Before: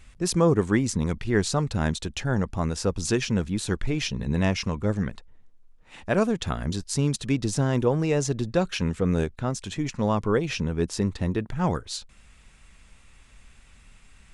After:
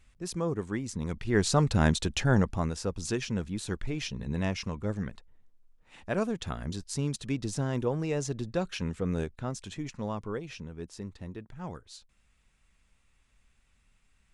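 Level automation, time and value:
0:00.85 −11 dB
0:01.62 +1.5 dB
0:02.37 +1.5 dB
0:02.81 −7 dB
0:09.62 −7 dB
0:10.70 −15 dB

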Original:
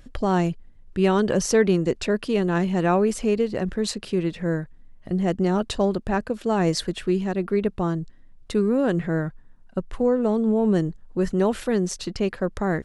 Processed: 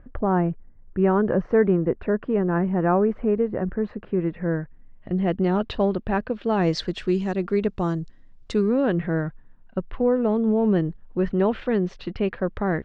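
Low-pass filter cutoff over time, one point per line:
low-pass filter 24 dB per octave
0:04.06 1,700 Hz
0:05.40 3,600 Hz
0:06.40 3,600 Hz
0:07.14 6,900 Hz
0:08.53 6,900 Hz
0:08.95 3,200 Hz

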